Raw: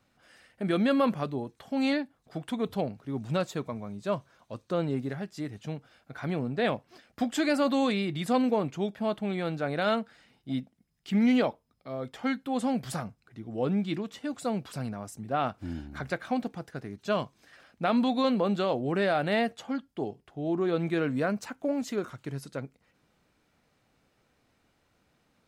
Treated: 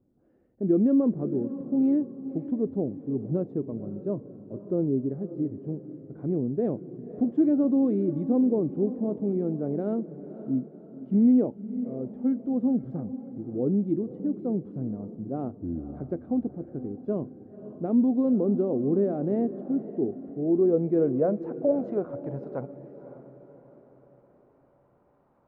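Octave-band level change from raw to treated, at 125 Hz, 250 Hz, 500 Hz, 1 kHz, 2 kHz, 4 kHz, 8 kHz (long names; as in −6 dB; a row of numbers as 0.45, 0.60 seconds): +2.0 dB, +5.0 dB, +2.0 dB, −11.0 dB, below −20 dB, below −35 dB, below −30 dB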